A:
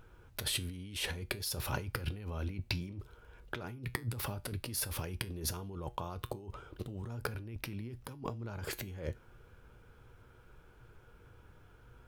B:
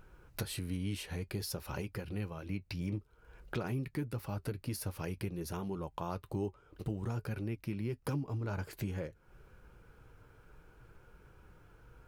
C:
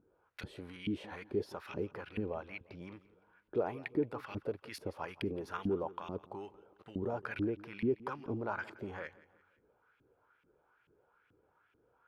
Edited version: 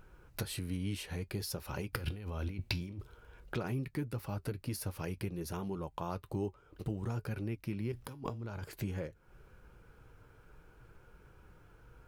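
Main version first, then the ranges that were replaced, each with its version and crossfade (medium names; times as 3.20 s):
B
1.93–3.44 s: from A
7.92–8.64 s: from A
not used: C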